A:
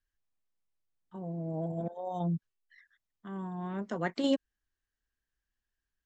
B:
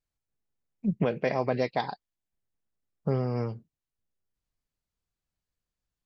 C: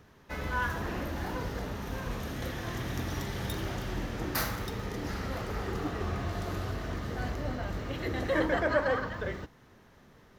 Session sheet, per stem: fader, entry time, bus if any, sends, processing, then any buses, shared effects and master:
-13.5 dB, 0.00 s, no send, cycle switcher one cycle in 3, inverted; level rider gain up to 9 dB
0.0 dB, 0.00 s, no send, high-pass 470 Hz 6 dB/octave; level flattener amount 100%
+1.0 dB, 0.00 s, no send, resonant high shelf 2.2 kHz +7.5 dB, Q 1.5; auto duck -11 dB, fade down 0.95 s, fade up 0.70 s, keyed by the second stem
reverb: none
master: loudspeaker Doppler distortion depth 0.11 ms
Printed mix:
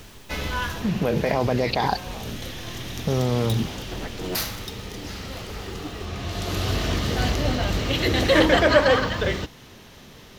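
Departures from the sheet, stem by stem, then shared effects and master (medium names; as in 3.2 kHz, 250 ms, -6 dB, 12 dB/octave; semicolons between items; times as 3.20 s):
stem B: missing high-pass 470 Hz 6 dB/octave; stem C +1.0 dB -> +11.0 dB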